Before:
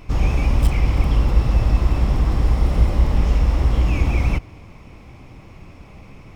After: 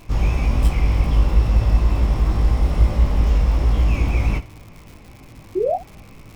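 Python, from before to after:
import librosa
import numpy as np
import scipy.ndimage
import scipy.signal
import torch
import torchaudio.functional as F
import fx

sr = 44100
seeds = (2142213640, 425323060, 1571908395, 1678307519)

y = fx.spec_paint(x, sr, seeds[0], shape='rise', start_s=5.55, length_s=0.21, low_hz=340.0, high_hz=790.0, level_db=-18.0)
y = fx.room_early_taps(y, sr, ms=(19, 73), db=(-4.0, -16.5))
y = fx.dmg_crackle(y, sr, seeds[1], per_s=190.0, level_db=-33.0)
y = F.gain(torch.from_numpy(y), -2.5).numpy()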